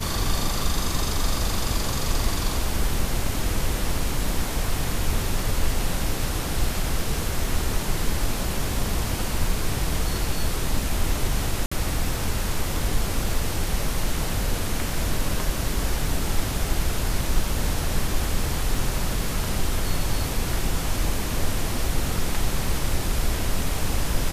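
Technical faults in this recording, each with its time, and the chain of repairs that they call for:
11.66–11.71 gap 55 ms
18.75 gap 2.3 ms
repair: interpolate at 11.66, 55 ms; interpolate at 18.75, 2.3 ms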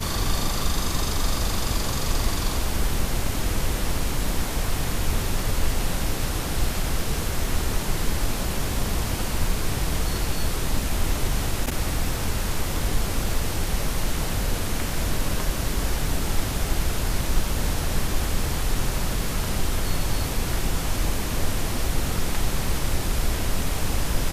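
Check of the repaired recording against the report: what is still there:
none

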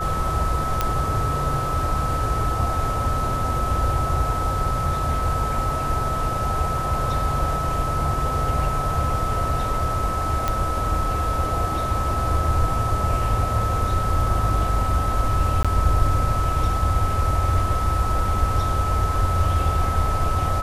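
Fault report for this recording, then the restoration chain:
tone 1300 Hz -25 dBFS
0.81 pop -6 dBFS
10.48 pop -8 dBFS
15.63–15.65 gap 16 ms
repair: de-click; notch 1300 Hz, Q 30; interpolate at 15.63, 16 ms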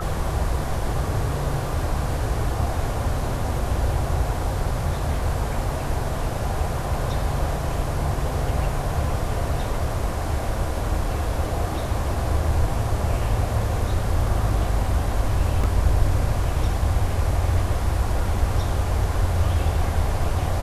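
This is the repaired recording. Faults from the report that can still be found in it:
none

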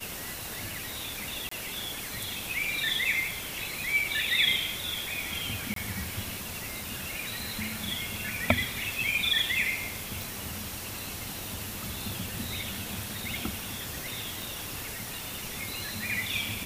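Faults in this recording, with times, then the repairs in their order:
1.49–1.51 gap 24 ms
5.74–5.76 gap 23 ms
10.22 pop
14.42 pop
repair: de-click; interpolate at 1.49, 24 ms; interpolate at 5.74, 23 ms

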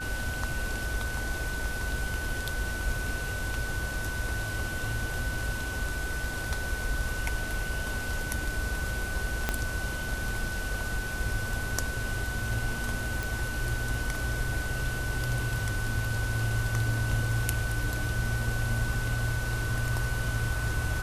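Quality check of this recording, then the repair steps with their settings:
tone 1500 Hz -35 dBFS
9.49 pop -11 dBFS
13.23 pop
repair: de-click; notch 1500 Hz, Q 30

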